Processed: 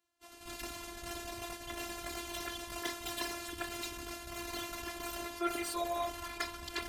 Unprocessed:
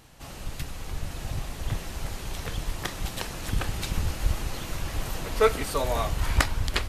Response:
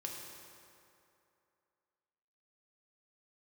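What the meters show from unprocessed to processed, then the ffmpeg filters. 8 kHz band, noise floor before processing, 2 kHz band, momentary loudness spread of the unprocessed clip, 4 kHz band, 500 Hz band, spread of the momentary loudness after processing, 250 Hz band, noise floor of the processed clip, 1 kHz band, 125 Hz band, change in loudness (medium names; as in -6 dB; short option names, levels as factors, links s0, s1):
-5.5 dB, -40 dBFS, -7.5 dB, 13 LU, -6.0 dB, -11.5 dB, 7 LU, -5.5 dB, -54 dBFS, -6.5 dB, -23.5 dB, -9.0 dB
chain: -af "afftfilt=real='hypot(re,im)*cos(PI*b)':imag='0':win_size=512:overlap=0.75,agate=range=0.0224:threshold=0.0251:ratio=3:detection=peak,areverse,acompressor=threshold=0.0178:ratio=10,areverse,asoftclip=type=tanh:threshold=0.0316,highpass=f=230:p=1,volume=2.99"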